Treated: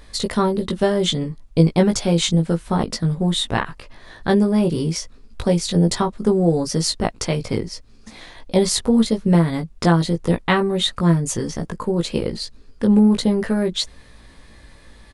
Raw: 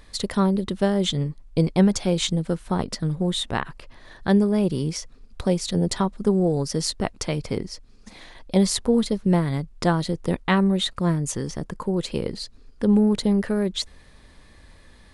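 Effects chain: doubler 18 ms -4 dB; gain +3 dB

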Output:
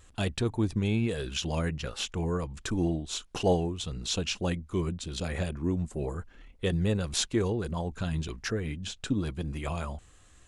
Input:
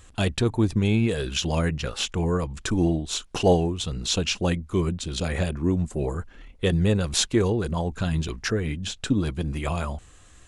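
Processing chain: vibrato 1.2 Hz 15 cents; gain -6 dB

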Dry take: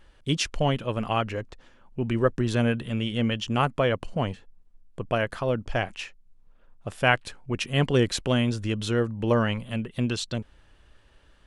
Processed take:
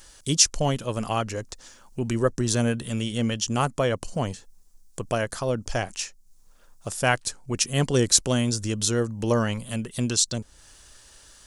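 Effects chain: resonant high shelf 4200 Hz +13.5 dB, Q 1.5; mismatched tape noise reduction encoder only

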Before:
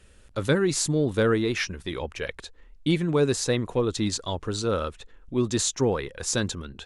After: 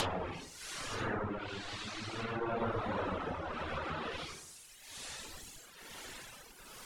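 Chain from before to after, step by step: spectral contrast lowered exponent 0.23; Paulstretch 7.5×, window 0.10 s, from 4.33; treble ducked by the level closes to 1200 Hz, closed at -24 dBFS; compressor 1.5:1, threshold -36 dBFS, peak gain reduction 4.5 dB; reverb removal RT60 1.7 s

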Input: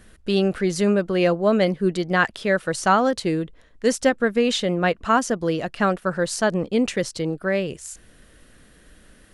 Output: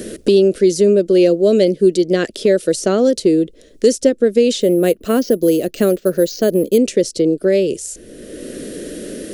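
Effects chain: EQ curve 140 Hz 0 dB, 380 Hz +15 dB, 600 Hz +8 dB, 860 Hz -14 dB, 5500 Hz +11 dB; 4.61–6.78 careless resampling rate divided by 4×, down filtered, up hold; three-band squash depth 70%; gain -2.5 dB

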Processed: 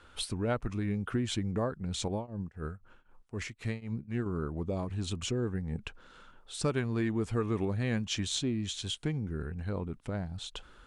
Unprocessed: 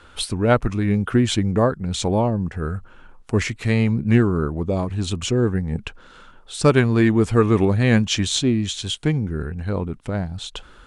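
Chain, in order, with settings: compressor 2:1, threshold -22 dBFS, peak gain reduction 7 dB; 2.08–4.26 tremolo triangle 3.9 Hz, depth 95%; gain -9 dB

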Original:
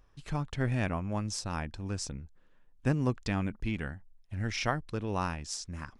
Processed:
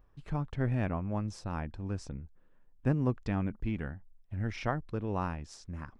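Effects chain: bell 8100 Hz -15 dB 2.9 oct

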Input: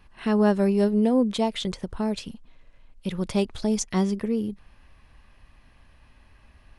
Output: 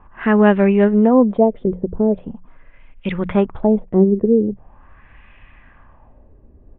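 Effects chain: LFO low-pass sine 0.42 Hz 400–2400 Hz; downsampling 8000 Hz; notches 60/120/180 Hz; gain +7.5 dB

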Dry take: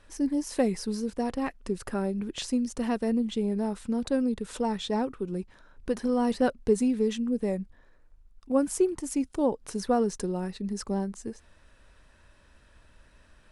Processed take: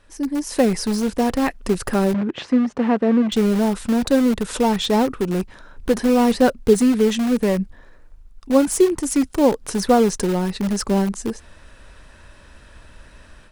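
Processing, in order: AGC gain up to 10.5 dB; in parallel at -11 dB: wrapped overs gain 18 dB; 2.14–3.32 on the sum: BPF 130–2100 Hz

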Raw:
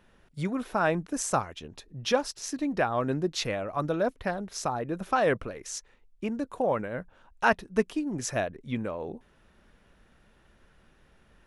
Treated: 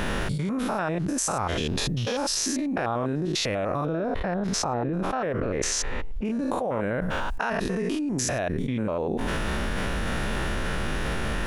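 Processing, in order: stepped spectrum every 0.1 s; 3.85–6.25 LPF 1700 Hz 6 dB/oct; fast leveller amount 100%; gain -2 dB

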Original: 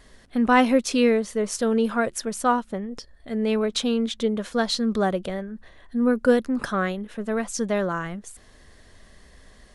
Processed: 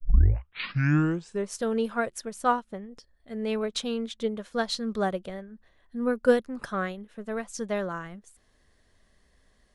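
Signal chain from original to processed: tape start at the beginning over 1.50 s; dynamic EQ 270 Hz, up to -5 dB, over -35 dBFS, Q 2.6; upward expander 1.5:1, over -41 dBFS

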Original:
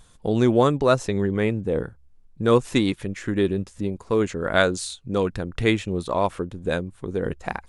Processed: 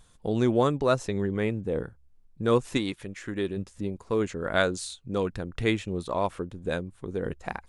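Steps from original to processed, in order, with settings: 2.77–3.57 low shelf 410 Hz -5.5 dB; gain -5 dB

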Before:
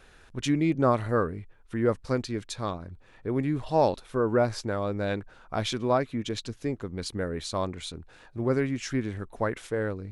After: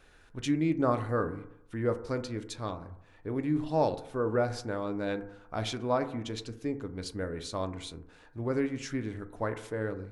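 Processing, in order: FDN reverb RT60 0.78 s, low-frequency decay 0.9×, high-frequency decay 0.25×, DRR 8 dB; gain -5 dB

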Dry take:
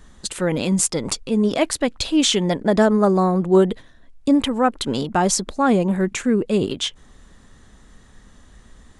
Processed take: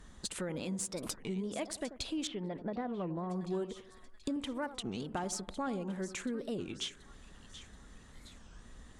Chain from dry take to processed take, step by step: compressor 4:1, threshold -31 dBFS, peak gain reduction 17.5 dB; on a send: split-band echo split 1300 Hz, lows 87 ms, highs 0.731 s, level -13 dB; on the sum: added harmonics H 2 -21 dB, 6 -39 dB, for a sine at -12.5 dBFS; 2.27–3.3 air absorption 450 m; record warp 33 1/3 rpm, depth 250 cents; gain -6 dB

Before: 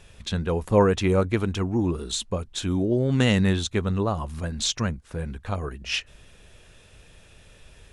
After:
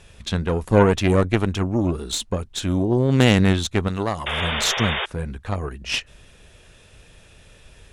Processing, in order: added harmonics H 4 -13 dB, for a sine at -5 dBFS; 4.26–5.06 painted sound noise 370–3700 Hz -28 dBFS; 3.88–4.28 tilt +2 dB/oct; gain +2.5 dB

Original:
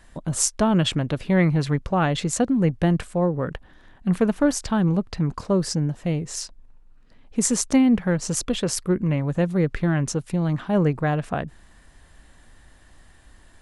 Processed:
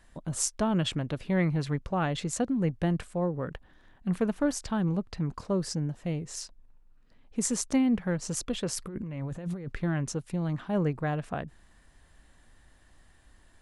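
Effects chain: 8.79–9.72 negative-ratio compressor -28 dBFS, ratio -1; gain -7.5 dB

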